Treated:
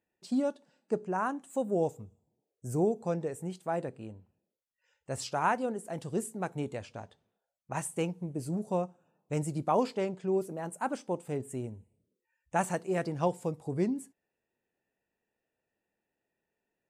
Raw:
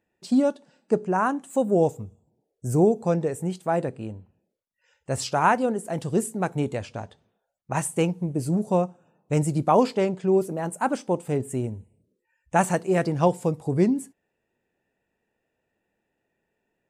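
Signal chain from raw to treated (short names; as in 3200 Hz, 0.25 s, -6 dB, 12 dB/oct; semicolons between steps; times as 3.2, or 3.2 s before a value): low shelf 210 Hz -3 dB; gain -8 dB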